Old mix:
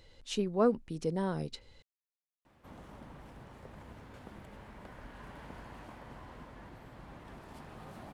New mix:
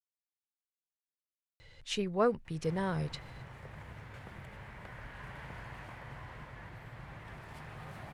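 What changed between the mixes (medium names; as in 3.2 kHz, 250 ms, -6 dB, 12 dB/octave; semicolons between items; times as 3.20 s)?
speech: entry +1.60 s; master: add graphic EQ 125/250/2000 Hz +9/-8/+8 dB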